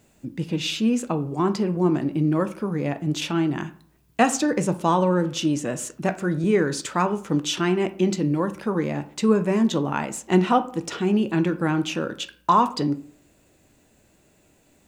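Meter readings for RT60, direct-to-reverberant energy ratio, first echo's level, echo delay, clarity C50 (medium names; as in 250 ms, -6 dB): 0.55 s, 10.0 dB, no echo, no echo, 15.5 dB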